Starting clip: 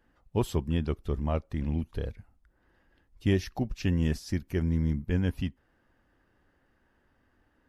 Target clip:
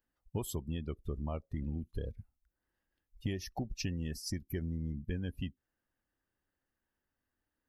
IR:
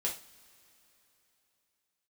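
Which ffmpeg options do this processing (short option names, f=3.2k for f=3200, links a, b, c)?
-af "aemphasis=mode=production:type=75kf,afftdn=nr=22:nf=-38,acompressor=threshold=-36dB:ratio=6,volume=2dB"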